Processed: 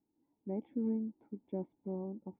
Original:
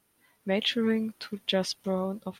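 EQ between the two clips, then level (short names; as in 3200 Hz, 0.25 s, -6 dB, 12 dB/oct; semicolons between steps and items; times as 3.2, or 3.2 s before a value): vocal tract filter u; +1.5 dB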